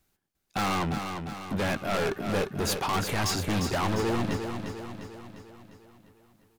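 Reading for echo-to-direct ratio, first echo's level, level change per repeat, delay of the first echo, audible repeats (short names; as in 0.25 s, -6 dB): -5.5 dB, -7.0 dB, -5.5 dB, 0.351 s, 6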